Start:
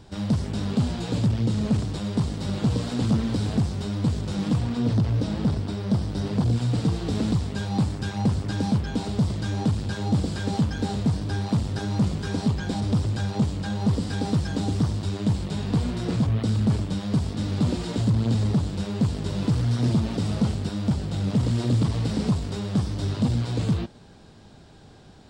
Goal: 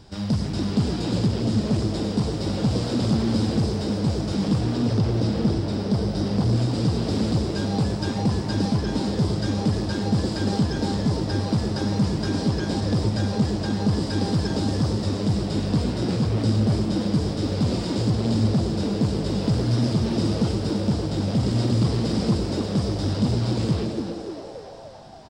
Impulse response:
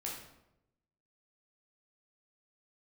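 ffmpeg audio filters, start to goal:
-filter_complex "[0:a]equalizer=frequency=5000:width_type=o:width=0.24:gain=9,asplit=8[link_01][link_02][link_03][link_04][link_05][link_06][link_07][link_08];[link_02]adelay=287,afreqshift=110,volume=-8dB[link_09];[link_03]adelay=574,afreqshift=220,volume=-12.6dB[link_10];[link_04]adelay=861,afreqshift=330,volume=-17.2dB[link_11];[link_05]adelay=1148,afreqshift=440,volume=-21.7dB[link_12];[link_06]adelay=1435,afreqshift=550,volume=-26.3dB[link_13];[link_07]adelay=1722,afreqshift=660,volume=-30.9dB[link_14];[link_08]adelay=2009,afreqshift=770,volume=-35.5dB[link_15];[link_01][link_09][link_10][link_11][link_12][link_13][link_14][link_15]amix=inputs=8:normalize=0,asplit=2[link_16][link_17];[1:a]atrim=start_sample=2205,adelay=94[link_18];[link_17][link_18]afir=irnorm=-1:irlink=0,volume=-9.5dB[link_19];[link_16][link_19]amix=inputs=2:normalize=0"

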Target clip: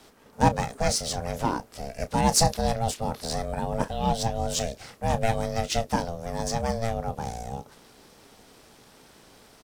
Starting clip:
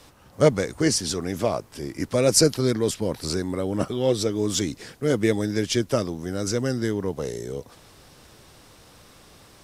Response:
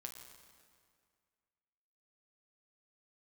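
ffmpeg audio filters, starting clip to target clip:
-filter_complex "[0:a]asplit=2[link_01][link_02];[link_02]adelay=30,volume=-13dB[link_03];[link_01][link_03]amix=inputs=2:normalize=0,aeval=exprs='val(0)*sin(2*PI*340*n/s)':channel_layout=same" -ar 44100 -c:a adpcm_ima_wav

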